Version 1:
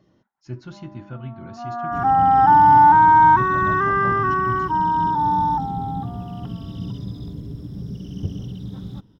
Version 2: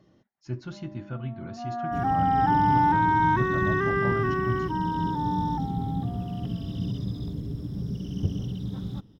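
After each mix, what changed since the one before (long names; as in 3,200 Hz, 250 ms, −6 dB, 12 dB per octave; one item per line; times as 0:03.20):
first sound: add flat-topped bell 1,100 Hz −11 dB 1.1 octaves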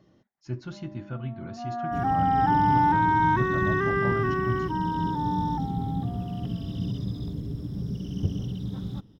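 nothing changed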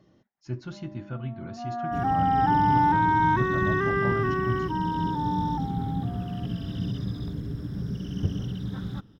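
second sound: add parametric band 1,600 Hz +12.5 dB 0.88 octaves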